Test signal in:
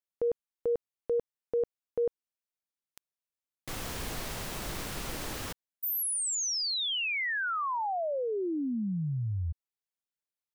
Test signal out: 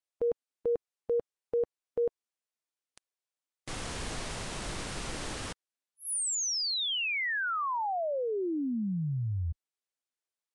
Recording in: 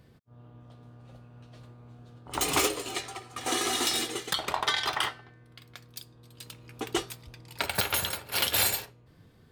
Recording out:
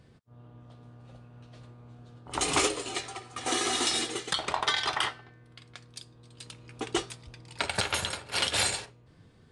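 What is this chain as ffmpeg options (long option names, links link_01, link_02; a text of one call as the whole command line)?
ffmpeg -i in.wav -ar 22050 -c:a libvorbis -b:a 64k out.ogg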